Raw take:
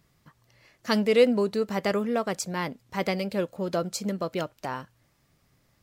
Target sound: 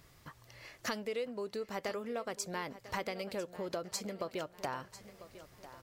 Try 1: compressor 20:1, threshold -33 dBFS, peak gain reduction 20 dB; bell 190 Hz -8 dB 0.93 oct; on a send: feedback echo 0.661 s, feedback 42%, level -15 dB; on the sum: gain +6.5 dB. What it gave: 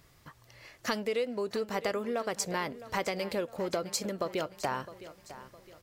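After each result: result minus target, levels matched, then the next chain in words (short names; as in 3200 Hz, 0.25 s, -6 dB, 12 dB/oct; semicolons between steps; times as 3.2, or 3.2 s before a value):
echo 0.336 s early; compressor: peak gain reduction -6 dB
compressor 20:1, threshold -33 dBFS, peak gain reduction 20 dB; bell 190 Hz -8 dB 0.93 oct; on a send: feedback echo 0.997 s, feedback 42%, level -15 dB; on the sum: gain +6.5 dB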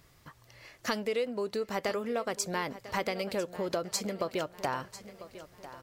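compressor: peak gain reduction -6 dB
compressor 20:1, threshold -39.5 dBFS, peak gain reduction 26 dB; bell 190 Hz -8 dB 0.93 oct; on a send: feedback echo 0.997 s, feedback 42%, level -15 dB; on the sum: gain +6.5 dB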